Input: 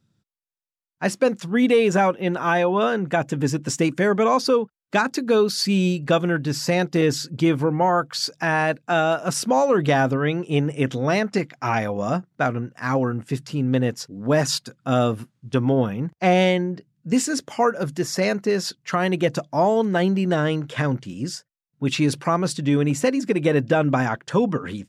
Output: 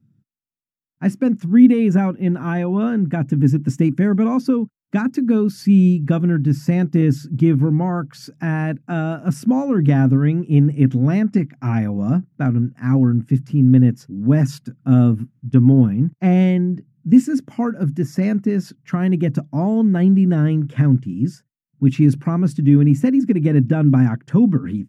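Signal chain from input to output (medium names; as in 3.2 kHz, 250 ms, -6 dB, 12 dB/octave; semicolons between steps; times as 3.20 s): ten-band graphic EQ 125 Hz +12 dB, 250 Hz +12 dB, 500 Hz -7 dB, 1 kHz -5 dB, 4 kHz -12 dB, 8 kHz -7 dB; trim -3 dB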